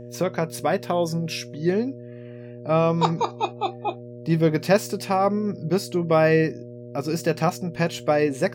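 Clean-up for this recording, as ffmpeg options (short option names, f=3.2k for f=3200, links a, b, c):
-af "bandreject=f=120.8:t=h:w=4,bandreject=f=241.6:t=h:w=4,bandreject=f=362.4:t=h:w=4,bandreject=f=483.2:t=h:w=4,bandreject=f=604:t=h:w=4"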